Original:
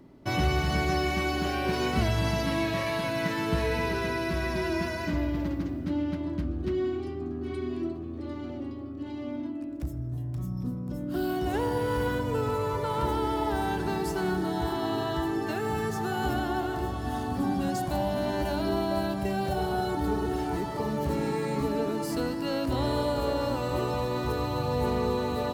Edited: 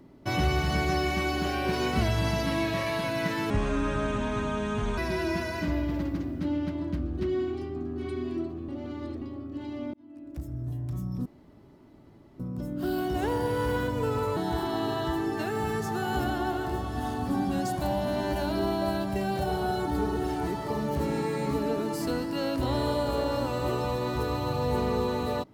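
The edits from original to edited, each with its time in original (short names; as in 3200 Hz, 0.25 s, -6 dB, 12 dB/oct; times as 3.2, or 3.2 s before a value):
3.5–4.43 speed 63%
8.14–8.67 reverse
9.39–10.09 fade in
10.71 insert room tone 1.14 s
12.68–14.46 cut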